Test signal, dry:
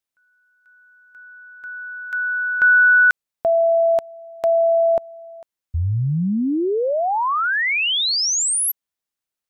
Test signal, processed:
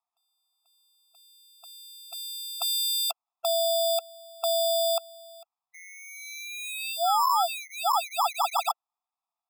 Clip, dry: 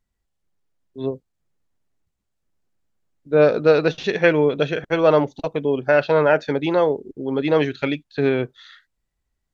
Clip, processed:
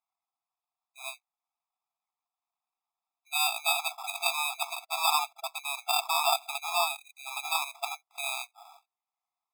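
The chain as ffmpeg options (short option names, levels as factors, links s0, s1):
-af "acrusher=samples=21:mix=1:aa=0.000001,afftfilt=real='re*eq(mod(floor(b*sr/1024/670),2),1)':imag='im*eq(mod(floor(b*sr/1024/670),2),1)':win_size=1024:overlap=0.75,volume=0.794"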